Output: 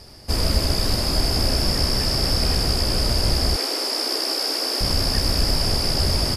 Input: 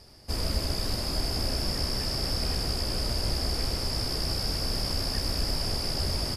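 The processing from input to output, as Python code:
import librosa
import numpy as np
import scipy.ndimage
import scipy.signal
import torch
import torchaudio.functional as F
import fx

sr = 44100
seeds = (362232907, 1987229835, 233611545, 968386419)

y = fx.steep_highpass(x, sr, hz=280.0, slope=48, at=(3.56, 4.81))
y = y * 10.0 ** (8.5 / 20.0)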